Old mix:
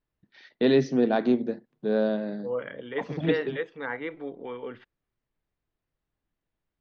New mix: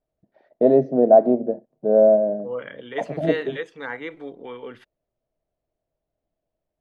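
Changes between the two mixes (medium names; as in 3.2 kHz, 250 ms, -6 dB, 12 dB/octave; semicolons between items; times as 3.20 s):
first voice: add resonant low-pass 640 Hz, resonance Q 7.4; master: remove distance through air 220 m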